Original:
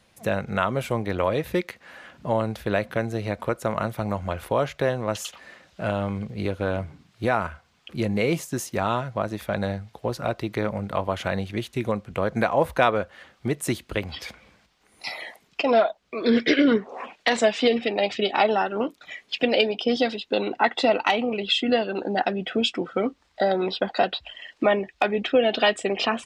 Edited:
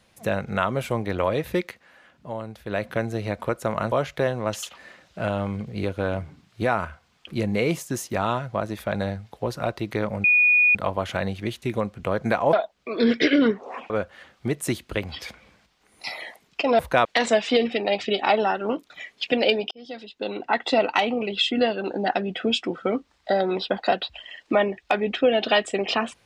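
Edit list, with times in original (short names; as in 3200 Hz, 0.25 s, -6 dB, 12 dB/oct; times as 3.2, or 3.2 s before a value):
1.66–2.87 dip -9 dB, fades 0.23 s
3.92–4.54 cut
10.86 add tone 2460 Hz -14 dBFS 0.51 s
12.64–12.9 swap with 15.79–17.16
19.82–20.88 fade in linear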